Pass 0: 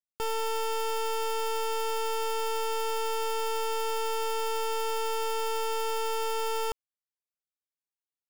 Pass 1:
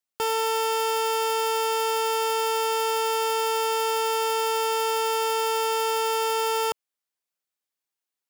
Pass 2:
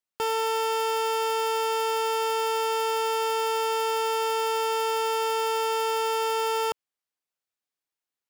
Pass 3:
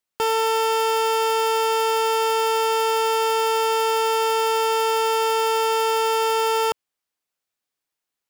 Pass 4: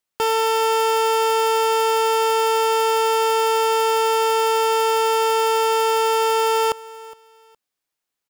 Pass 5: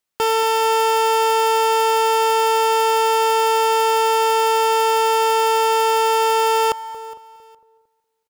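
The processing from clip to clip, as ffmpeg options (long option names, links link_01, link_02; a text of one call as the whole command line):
ffmpeg -i in.wav -af "highpass=frequency=270:poles=1,volume=7dB" out.wav
ffmpeg -i in.wav -af "highshelf=frequency=5600:gain=-5,volume=-1dB" out.wav
ffmpeg -i in.wav -af "acontrast=39" out.wav
ffmpeg -i in.wav -af "aecho=1:1:414|828:0.1|0.025,volume=1.5dB" out.wav
ffmpeg -i in.wav -filter_complex "[0:a]asplit=2[link_01][link_02];[link_02]adelay=227,lowpass=frequency=1300:poles=1,volume=-15dB,asplit=2[link_03][link_04];[link_04]adelay=227,lowpass=frequency=1300:poles=1,volume=0.51,asplit=2[link_05][link_06];[link_06]adelay=227,lowpass=frequency=1300:poles=1,volume=0.51,asplit=2[link_07][link_08];[link_08]adelay=227,lowpass=frequency=1300:poles=1,volume=0.51,asplit=2[link_09][link_10];[link_10]adelay=227,lowpass=frequency=1300:poles=1,volume=0.51[link_11];[link_01][link_03][link_05][link_07][link_09][link_11]amix=inputs=6:normalize=0,volume=1.5dB" out.wav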